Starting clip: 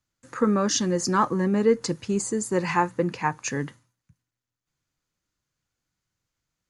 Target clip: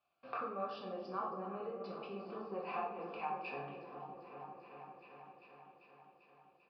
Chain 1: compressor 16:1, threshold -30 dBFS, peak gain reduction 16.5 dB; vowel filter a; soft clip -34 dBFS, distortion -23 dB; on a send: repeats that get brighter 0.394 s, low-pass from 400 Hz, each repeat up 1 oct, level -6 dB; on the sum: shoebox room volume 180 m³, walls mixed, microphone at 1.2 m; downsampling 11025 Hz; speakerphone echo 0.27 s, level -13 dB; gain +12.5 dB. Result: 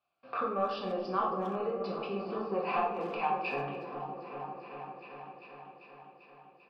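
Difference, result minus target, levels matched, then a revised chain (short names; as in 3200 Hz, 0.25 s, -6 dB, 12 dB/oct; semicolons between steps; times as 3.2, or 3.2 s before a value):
compressor: peak gain reduction -10 dB
compressor 16:1, threshold -40.5 dBFS, peak gain reduction 26 dB; vowel filter a; soft clip -34 dBFS, distortion -39 dB; on a send: repeats that get brighter 0.394 s, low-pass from 400 Hz, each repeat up 1 oct, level -6 dB; on the sum: shoebox room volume 180 m³, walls mixed, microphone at 1.2 m; downsampling 11025 Hz; speakerphone echo 0.27 s, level -13 dB; gain +12.5 dB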